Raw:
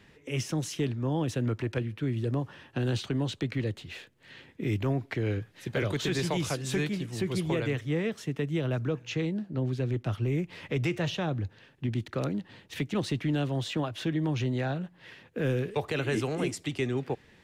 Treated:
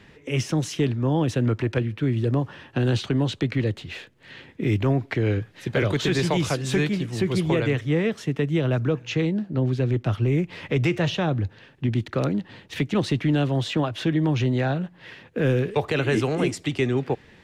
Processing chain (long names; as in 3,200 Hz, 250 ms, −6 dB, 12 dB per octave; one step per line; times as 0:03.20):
high-shelf EQ 7,700 Hz −8.5 dB
level +7 dB